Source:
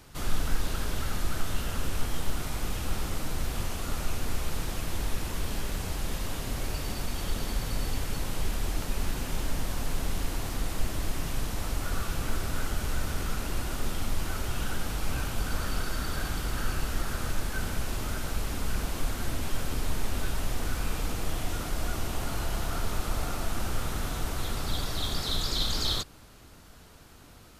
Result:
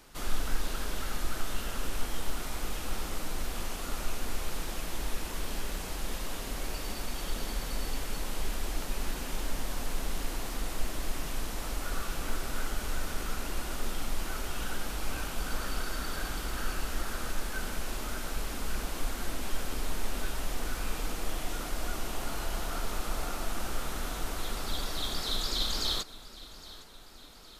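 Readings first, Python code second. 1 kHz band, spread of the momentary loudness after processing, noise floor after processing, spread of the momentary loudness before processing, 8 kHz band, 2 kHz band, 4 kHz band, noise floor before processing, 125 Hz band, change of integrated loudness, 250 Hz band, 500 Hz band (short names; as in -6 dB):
-1.5 dB, 2 LU, -47 dBFS, 2 LU, -1.5 dB, -1.5 dB, -1.5 dB, -51 dBFS, -7.5 dB, -3.0 dB, -4.0 dB, -2.0 dB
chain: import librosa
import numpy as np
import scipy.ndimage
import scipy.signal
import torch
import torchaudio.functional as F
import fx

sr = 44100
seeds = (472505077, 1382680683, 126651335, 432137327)

p1 = fx.peak_eq(x, sr, hz=100.0, db=-13.5, octaves=1.2)
p2 = p1 + fx.echo_feedback(p1, sr, ms=813, feedback_pct=52, wet_db=-18.0, dry=0)
y = F.gain(torch.from_numpy(p2), -1.5).numpy()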